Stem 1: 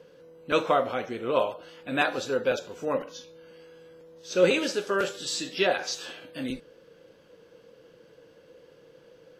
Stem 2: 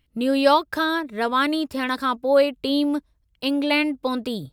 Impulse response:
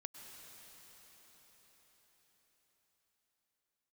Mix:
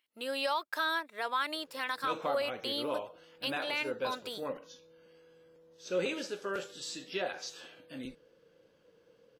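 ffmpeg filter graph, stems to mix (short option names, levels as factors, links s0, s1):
-filter_complex "[0:a]adelay=1550,volume=0.316[s0];[1:a]highpass=740,volume=0.501[s1];[s0][s1]amix=inputs=2:normalize=0,alimiter=limit=0.0794:level=0:latency=1:release=56"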